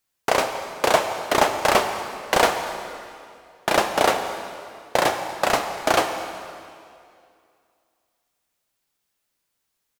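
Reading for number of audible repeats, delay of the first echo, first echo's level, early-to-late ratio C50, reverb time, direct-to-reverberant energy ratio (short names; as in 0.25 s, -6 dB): 1, 0.24 s, -20.5 dB, 7.0 dB, 2.4 s, 6.0 dB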